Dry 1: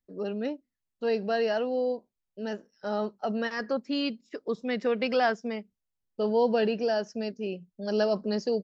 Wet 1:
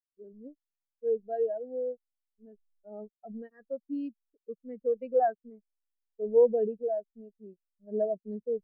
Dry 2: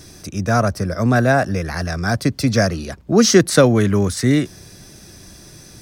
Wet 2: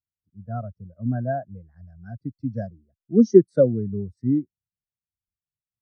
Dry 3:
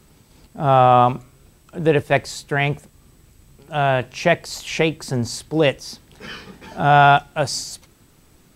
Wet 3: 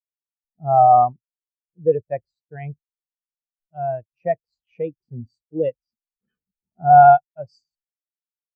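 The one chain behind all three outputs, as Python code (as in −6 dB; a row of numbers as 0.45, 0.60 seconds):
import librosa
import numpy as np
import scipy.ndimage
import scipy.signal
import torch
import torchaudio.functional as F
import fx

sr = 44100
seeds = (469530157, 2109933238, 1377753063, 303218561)

y = fx.backlash(x, sr, play_db=-31.0)
y = fx.spectral_expand(y, sr, expansion=2.5)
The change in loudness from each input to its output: −1.0, −5.5, +1.5 LU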